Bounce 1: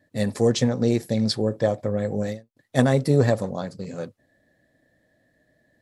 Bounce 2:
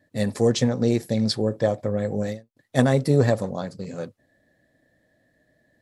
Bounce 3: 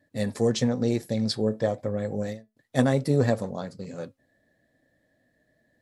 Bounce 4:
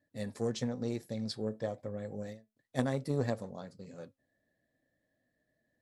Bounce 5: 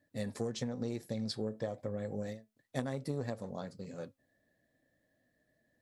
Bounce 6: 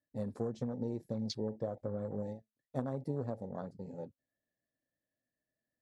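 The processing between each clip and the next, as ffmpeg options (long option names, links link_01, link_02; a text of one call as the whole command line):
ffmpeg -i in.wav -af anull out.wav
ffmpeg -i in.wav -af "flanger=delay=3.5:depth=1.1:regen=87:speed=1:shape=sinusoidal,volume=1dB" out.wav
ffmpeg -i in.wav -af "aeval=exprs='0.473*(cos(1*acos(clip(val(0)/0.473,-1,1)))-cos(1*PI/2))+0.0335*(cos(3*acos(clip(val(0)/0.473,-1,1)))-cos(3*PI/2))+0.0473*(cos(4*acos(clip(val(0)/0.473,-1,1)))-cos(4*PI/2))+0.0266*(cos(6*acos(clip(val(0)/0.473,-1,1)))-cos(6*PI/2))':channel_layout=same,volume=-9dB" out.wav
ffmpeg -i in.wav -af "acompressor=threshold=-36dB:ratio=6,volume=3.5dB" out.wav
ffmpeg -i in.wav -af "afwtdn=0.00562" out.wav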